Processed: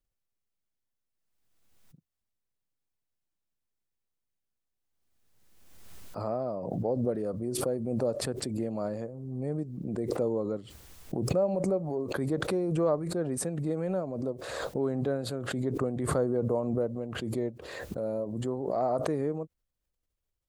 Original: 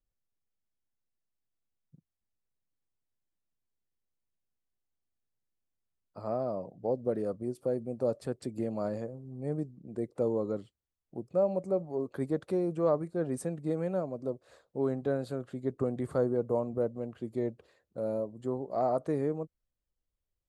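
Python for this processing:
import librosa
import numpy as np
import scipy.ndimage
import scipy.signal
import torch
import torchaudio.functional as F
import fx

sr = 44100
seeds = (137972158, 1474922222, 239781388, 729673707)

y = fx.pre_swell(x, sr, db_per_s=34.0)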